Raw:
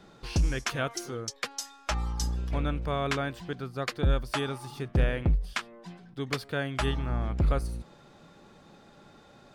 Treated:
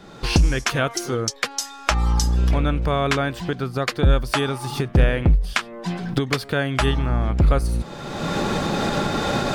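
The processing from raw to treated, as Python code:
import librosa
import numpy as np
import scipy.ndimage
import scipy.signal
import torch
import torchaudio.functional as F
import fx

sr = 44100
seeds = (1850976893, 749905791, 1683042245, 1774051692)

y = fx.recorder_agc(x, sr, target_db=-21.5, rise_db_per_s=30.0, max_gain_db=30)
y = F.gain(torch.from_numpy(y), 8.5).numpy()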